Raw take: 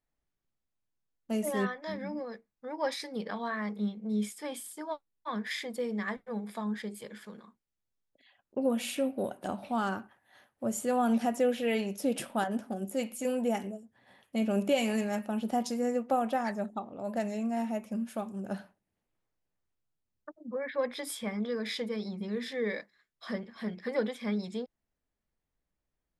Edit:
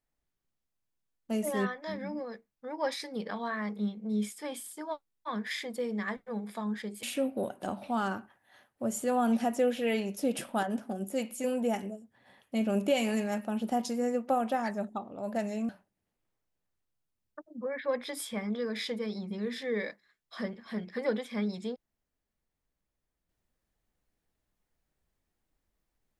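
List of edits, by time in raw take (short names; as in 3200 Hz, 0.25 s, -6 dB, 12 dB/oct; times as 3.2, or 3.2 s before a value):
7.03–8.84 cut
17.5–18.59 cut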